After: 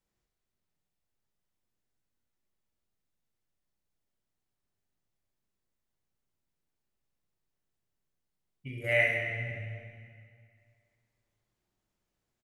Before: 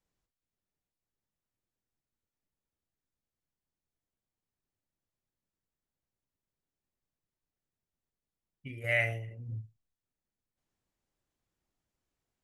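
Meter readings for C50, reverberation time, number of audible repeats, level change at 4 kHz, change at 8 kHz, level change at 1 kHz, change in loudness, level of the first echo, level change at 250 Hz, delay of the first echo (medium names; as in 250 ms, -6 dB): 1.0 dB, 2.2 s, 1, +3.5 dB, no reading, +2.5 dB, +3.5 dB, -8.0 dB, +2.5 dB, 66 ms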